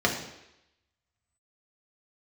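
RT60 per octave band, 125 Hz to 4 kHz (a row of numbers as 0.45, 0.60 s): 0.70, 0.80, 0.85, 0.85, 0.90, 0.90 s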